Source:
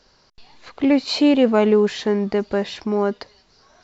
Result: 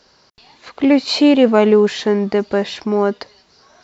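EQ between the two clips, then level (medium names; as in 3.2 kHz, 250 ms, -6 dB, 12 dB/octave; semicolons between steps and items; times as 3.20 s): high-pass 120 Hz 6 dB/octave; +4.5 dB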